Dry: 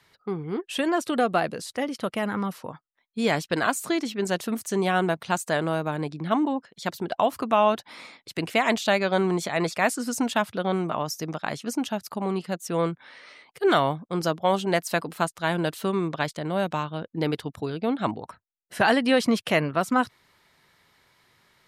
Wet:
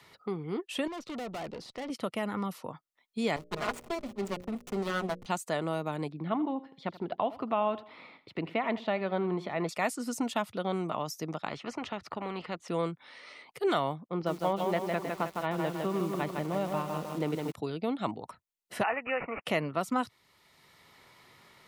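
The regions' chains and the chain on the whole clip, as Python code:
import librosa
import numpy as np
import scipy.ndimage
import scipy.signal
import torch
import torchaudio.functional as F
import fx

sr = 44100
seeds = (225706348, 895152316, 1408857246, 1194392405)

y = fx.chain(x, sr, fx.lowpass(hz=5400.0, slope=24),
    fx.tube_stage(drive_db=33.0, bias=0.7), at=(0.87, 1.9))
y = fx.chain(y, sr, fx.lower_of_two(delay_ms=4.8),
    fx.backlash(play_db=-25.0),
    fx.hum_notches(base_hz=60, count=10), at=(3.36, 5.26))
y = fx.chain(y, sr, fx.air_absorb(metres=390.0),
    fx.echo_feedback(ms=82, feedback_pct=32, wet_db=-17.5), at=(6.12, 9.69))
y = fx.chain(y, sr, fx.lowpass(hz=1700.0, slope=12),
    fx.spectral_comp(ratio=2.0), at=(11.48, 12.68))
y = fx.chain(y, sr, fx.gaussian_blur(sigma=2.8),
    fx.echo_crushed(ms=157, feedback_pct=55, bits=7, wet_db=-4), at=(14.08, 17.52))
y = fx.chain(y, sr, fx.highpass(hz=650.0, slope=12),
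    fx.resample_bad(factor=8, down='none', up='filtered'), at=(18.83, 19.45))
y = fx.low_shelf(y, sr, hz=61.0, db=-8.5)
y = fx.notch(y, sr, hz=1600.0, q=6.8)
y = fx.band_squash(y, sr, depth_pct=40)
y = y * librosa.db_to_amplitude(-6.0)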